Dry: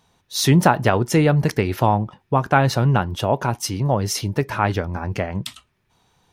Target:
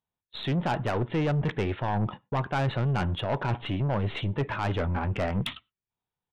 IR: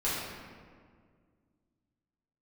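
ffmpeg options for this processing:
-filter_complex "[0:a]agate=range=-35dB:threshold=-37dB:ratio=16:detection=peak,areverse,acompressor=threshold=-25dB:ratio=10,areverse,aeval=exprs='0.211*(cos(1*acos(clip(val(0)/0.211,-1,1)))-cos(1*PI/2))+0.0376*(cos(2*acos(clip(val(0)/0.211,-1,1)))-cos(2*PI/2))+0.0119*(cos(3*acos(clip(val(0)/0.211,-1,1)))-cos(3*PI/2))+0.00841*(cos(8*acos(clip(val(0)/0.211,-1,1)))-cos(8*PI/2))':channel_layout=same,aresample=8000,aresample=44100,asplit=2[link_01][link_02];[1:a]atrim=start_sample=2205,afade=type=out:start_time=0.17:duration=0.01,atrim=end_sample=7938[link_03];[link_02][link_03]afir=irnorm=-1:irlink=0,volume=-32.5dB[link_04];[link_01][link_04]amix=inputs=2:normalize=0,asoftclip=type=tanh:threshold=-29dB,volume=7dB"

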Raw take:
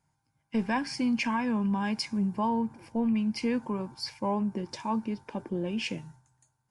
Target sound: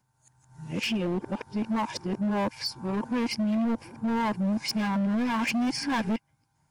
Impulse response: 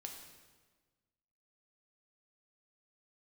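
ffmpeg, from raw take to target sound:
-af "areverse,asoftclip=type=hard:threshold=-29dB,volume=5dB"

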